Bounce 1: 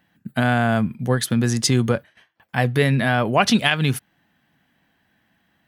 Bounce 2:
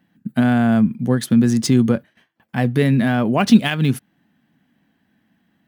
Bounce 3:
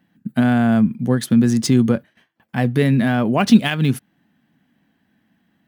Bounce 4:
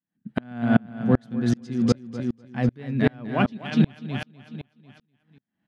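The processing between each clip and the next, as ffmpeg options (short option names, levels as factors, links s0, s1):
-filter_complex "[0:a]equalizer=f=230:w=0.95:g=11.5,acrossover=split=2600[s0][s1];[s1]acrusher=bits=3:mode=log:mix=0:aa=0.000001[s2];[s0][s2]amix=inputs=2:normalize=0,volume=0.631"
-af anull
-filter_complex "[0:a]lowpass=4500,asplit=2[s0][s1];[s1]aecho=0:1:248|496|744|992|1240|1488:0.631|0.309|0.151|0.0742|0.0364|0.0178[s2];[s0][s2]amix=inputs=2:normalize=0,aeval=exprs='val(0)*pow(10,-35*if(lt(mod(-2.6*n/s,1),2*abs(-2.6)/1000),1-mod(-2.6*n/s,1)/(2*abs(-2.6)/1000),(mod(-2.6*n/s,1)-2*abs(-2.6)/1000)/(1-2*abs(-2.6)/1000))/20)':c=same"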